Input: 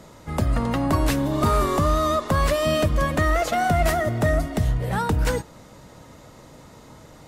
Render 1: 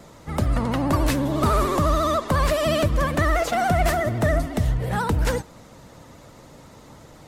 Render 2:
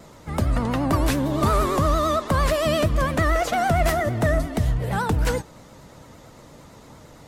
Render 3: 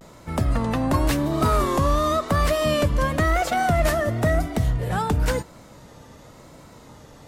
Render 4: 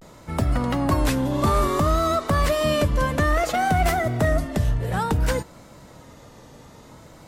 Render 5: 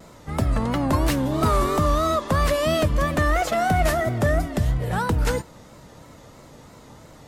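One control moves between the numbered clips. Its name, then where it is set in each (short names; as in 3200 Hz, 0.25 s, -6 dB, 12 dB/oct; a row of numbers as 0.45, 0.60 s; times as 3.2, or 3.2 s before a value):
vibrato, rate: 14, 8.8, 0.95, 0.58, 3 Hz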